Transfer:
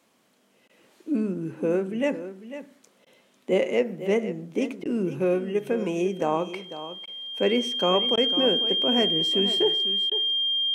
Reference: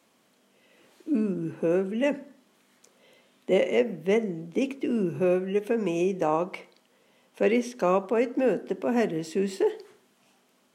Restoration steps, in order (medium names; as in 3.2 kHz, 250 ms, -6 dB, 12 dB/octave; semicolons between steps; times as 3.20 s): band-stop 3.2 kHz, Q 30; interpolate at 0.68/3.05/4.84/7.06/8.16/10.10 s, 13 ms; inverse comb 498 ms -12.5 dB